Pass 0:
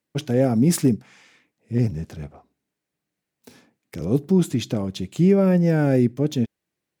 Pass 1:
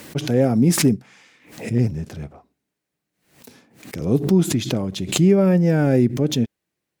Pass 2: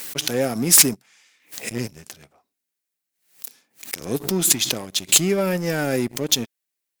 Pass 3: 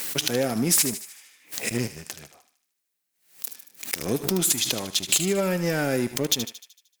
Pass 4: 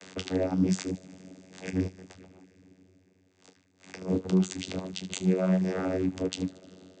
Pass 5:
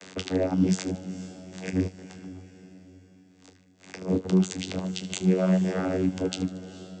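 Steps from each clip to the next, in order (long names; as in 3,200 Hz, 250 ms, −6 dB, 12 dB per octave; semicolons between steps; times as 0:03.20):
background raised ahead of every attack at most 110 dB per second; level +1.5 dB
spectral tilt +4 dB per octave; leveller curve on the samples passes 2; level −7 dB
downward compressor 3 to 1, threshold −24 dBFS, peak gain reduction 12 dB; feedback echo with a high-pass in the loop 76 ms, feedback 55%, high-pass 1,100 Hz, level −10 dB; level +2.5 dB
coupled-rooms reverb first 0.43 s, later 4.5 s, from −18 dB, DRR 5 dB; reverb reduction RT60 0.52 s; channel vocoder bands 16, saw 92.9 Hz; level −2.5 dB
feedback delay with all-pass diffusion 463 ms, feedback 46%, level −15 dB; level +2.5 dB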